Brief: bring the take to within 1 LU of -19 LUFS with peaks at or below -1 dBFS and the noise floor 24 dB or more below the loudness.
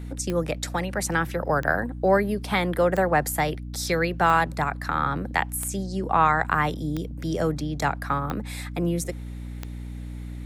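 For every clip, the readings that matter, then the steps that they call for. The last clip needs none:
clicks found 8; hum 60 Hz; highest harmonic 300 Hz; hum level -32 dBFS; loudness -25.0 LUFS; peak level -6.5 dBFS; loudness target -19.0 LUFS
-> de-click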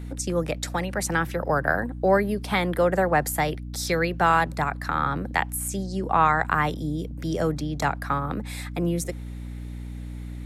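clicks found 0; hum 60 Hz; highest harmonic 300 Hz; hum level -32 dBFS
-> hum notches 60/120/180/240/300 Hz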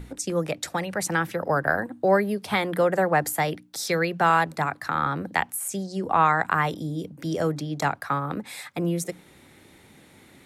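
hum not found; loudness -25.5 LUFS; peak level -6.0 dBFS; loudness target -19.0 LUFS
-> trim +6.5 dB; peak limiter -1 dBFS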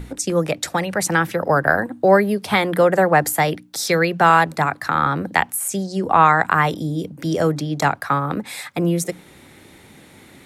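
loudness -19.0 LUFS; peak level -1.0 dBFS; noise floor -47 dBFS

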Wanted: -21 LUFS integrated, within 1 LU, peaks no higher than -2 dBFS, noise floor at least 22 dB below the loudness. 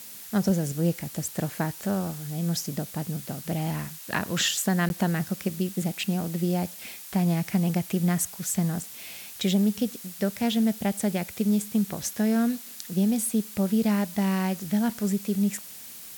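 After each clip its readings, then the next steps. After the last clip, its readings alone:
dropouts 1; longest dropout 11 ms; noise floor -43 dBFS; noise floor target -49 dBFS; loudness -27.0 LUFS; peak level -12.0 dBFS; loudness target -21.0 LUFS
-> interpolate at 4.89 s, 11 ms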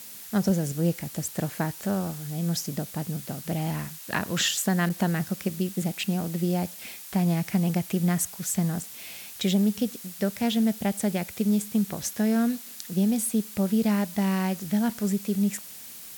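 dropouts 0; noise floor -43 dBFS; noise floor target -49 dBFS
-> noise reduction 6 dB, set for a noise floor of -43 dBFS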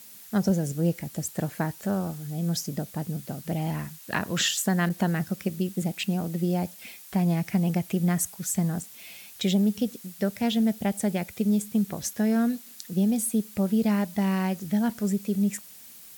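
noise floor -47 dBFS; noise floor target -49 dBFS
-> noise reduction 6 dB, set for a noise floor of -47 dBFS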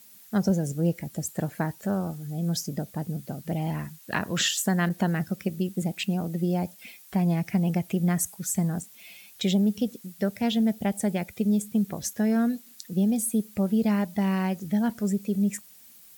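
noise floor -52 dBFS; loudness -27.5 LUFS; peak level -12.5 dBFS; loudness target -21.0 LUFS
-> trim +6.5 dB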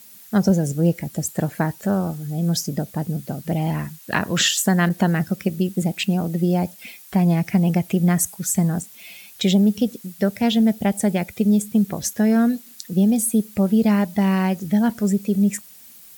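loudness -21.0 LUFS; peak level -6.0 dBFS; noise floor -45 dBFS

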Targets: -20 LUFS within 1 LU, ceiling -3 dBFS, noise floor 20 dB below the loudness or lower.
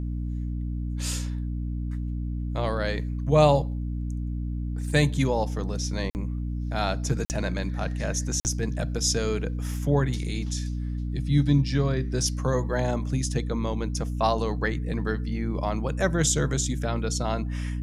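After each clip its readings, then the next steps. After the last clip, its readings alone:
dropouts 3; longest dropout 49 ms; hum 60 Hz; highest harmonic 300 Hz; hum level -27 dBFS; loudness -27.0 LUFS; peak level -6.0 dBFS; loudness target -20.0 LUFS
-> interpolate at 6.10/7.25/8.40 s, 49 ms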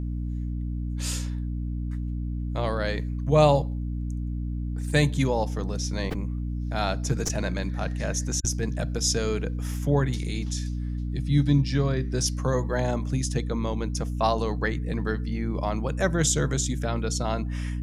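dropouts 0; hum 60 Hz; highest harmonic 300 Hz; hum level -27 dBFS
-> hum notches 60/120/180/240/300 Hz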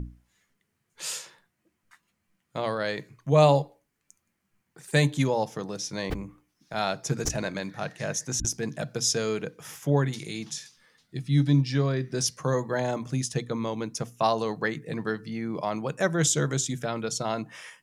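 hum not found; loudness -28.0 LUFS; peak level -6.5 dBFS; loudness target -20.0 LUFS
-> trim +8 dB; peak limiter -3 dBFS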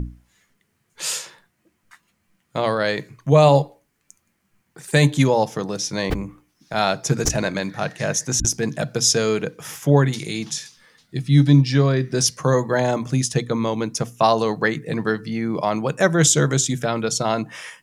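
loudness -20.5 LUFS; peak level -3.0 dBFS; noise floor -70 dBFS

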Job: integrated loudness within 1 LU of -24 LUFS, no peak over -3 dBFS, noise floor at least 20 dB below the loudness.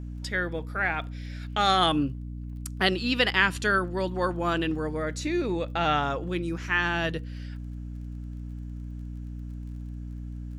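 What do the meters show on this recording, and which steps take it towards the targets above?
tick rate 24 per s; hum 60 Hz; highest harmonic 300 Hz; hum level -34 dBFS; loudness -26.5 LUFS; peak level -7.0 dBFS; loudness target -24.0 LUFS
-> de-click; hum notches 60/120/180/240/300 Hz; trim +2.5 dB

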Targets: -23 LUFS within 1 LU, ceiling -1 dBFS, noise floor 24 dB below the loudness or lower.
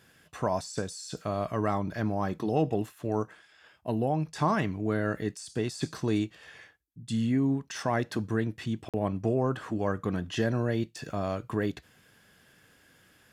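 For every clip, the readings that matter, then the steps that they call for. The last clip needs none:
dropouts 1; longest dropout 47 ms; loudness -31.0 LUFS; peak level -14.0 dBFS; loudness target -23.0 LUFS
-> interpolate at 8.89 s, 47 ms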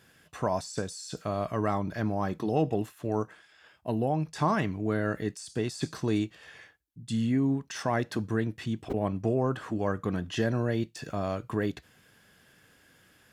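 dropouts 0; loudness -31.0 LUFS; peak level -14.0 dBFS; loudness target -23.0 LUFS
-> trim +8 dB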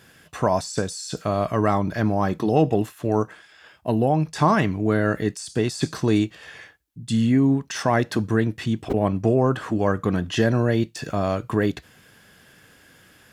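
loudness -23.0 LUFS; peak level -6.0 dBFS; noise floor -54 dBFS

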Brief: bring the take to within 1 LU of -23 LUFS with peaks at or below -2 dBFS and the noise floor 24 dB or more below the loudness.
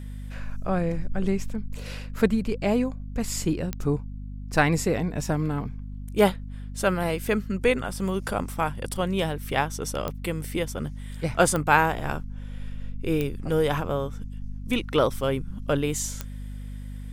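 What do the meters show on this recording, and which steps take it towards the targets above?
clicks found 5; hum 50 Hz; highest harmonic 250 Hz; hum level -33 dBFS; loudness -26.5 LUFS; peak level -4.0 dBFS; loudness target -23.0 LUFS
-> de-click; hum notches 50/100/150/200/250 Hz; trim +3.5 dB; peak limiter -2 dBFS

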